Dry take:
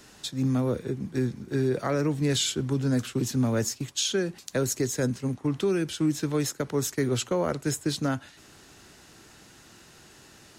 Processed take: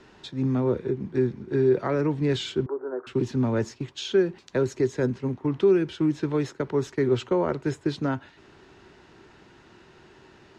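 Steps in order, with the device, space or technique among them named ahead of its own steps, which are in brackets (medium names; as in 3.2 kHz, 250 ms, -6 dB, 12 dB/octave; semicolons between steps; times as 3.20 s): 2.66–3.07 s: elliptic band-pass 360–1400 Hz, stop band 40 dB; inside a cardboard box (low-pass 3 kHz 12 dB/octave; small resonant body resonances 380/930 Hz, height 8 dB)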